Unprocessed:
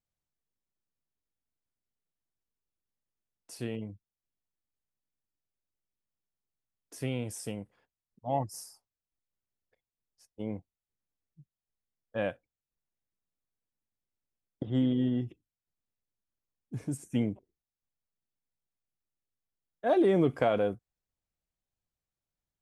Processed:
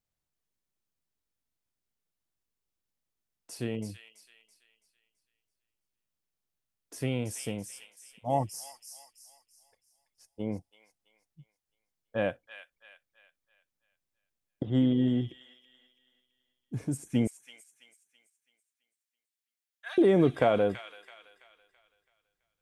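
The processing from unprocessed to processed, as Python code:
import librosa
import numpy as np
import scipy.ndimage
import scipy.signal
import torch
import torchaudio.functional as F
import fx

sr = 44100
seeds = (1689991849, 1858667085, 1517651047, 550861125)

y = fx.highpass(x, sr, hz=1500.0, slope=24, at=(17.27, 19.98))
y = fx.echo_wet_highpass(y, sr, ms=331, feedback_pct=41, hz=2000.0, wet_db=-5.5)
y = y * librosa.db_to_amplitude(2.5)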